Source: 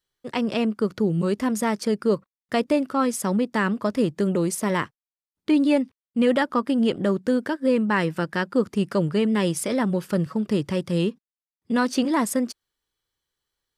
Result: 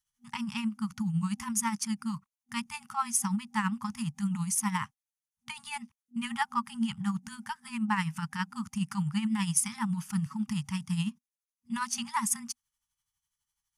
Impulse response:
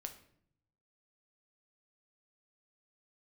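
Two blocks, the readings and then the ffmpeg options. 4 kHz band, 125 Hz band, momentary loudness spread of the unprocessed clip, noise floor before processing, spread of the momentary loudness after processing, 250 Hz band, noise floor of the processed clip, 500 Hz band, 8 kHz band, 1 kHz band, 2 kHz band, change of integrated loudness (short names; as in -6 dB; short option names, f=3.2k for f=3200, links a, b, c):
-6.0 dB, -5.5 dB, 5 LU, under -85 dBFS, 12 LU, -10.0 dB, under -85 dBFS, under -40 dB, +2.5 dB, -5.5 dB, -7.5 dB, -8.5 dB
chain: -af "equalizer=f=250:t=o:w=0.33:g=-6,equalizer=f=1.6k:t=o:w=0.33:g=-6,equalizer=f=4k:t=o:w=0.33:g=-8,equalizer=f=6.3k:t=o:w=0.33:g=9,equalizer=f=10k:t=o:w=0.33:g=10,tremolo=f=12:d=0.59,afftfilt=real='re*(1-between(b*sr/4096,240,790))':imag='im*(1-between(b*sr/4096,240,790))':win_size=4096:overlap=0.75,volume=-2dB"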